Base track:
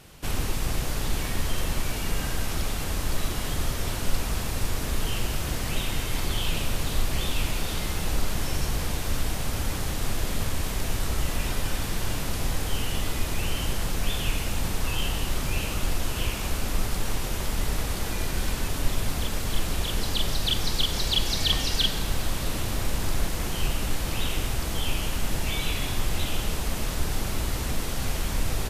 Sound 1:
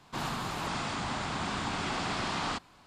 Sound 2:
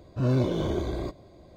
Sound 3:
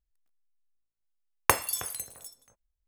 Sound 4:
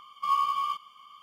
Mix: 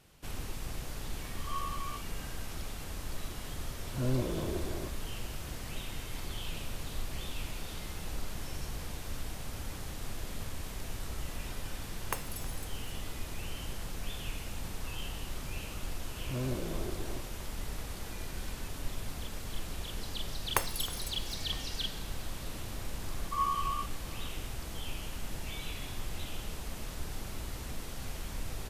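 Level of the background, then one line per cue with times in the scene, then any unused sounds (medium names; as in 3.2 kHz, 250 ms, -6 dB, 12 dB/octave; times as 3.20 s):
base track -12 dB
1.24 s: add 4 -13.5 dB + swell ahead of each attack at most 130 dB/s
3.78 s: add 2 -8 dB
10.63 s: add 3 -14.5 dB
16.11 s: add 2 -11.5 dB
19.07 s: add 3 -8 dB
23.09 s: add 4 -11.5 dB + peaking EQ 910 Hz +10.5 dB 0.68 oct
not used: 1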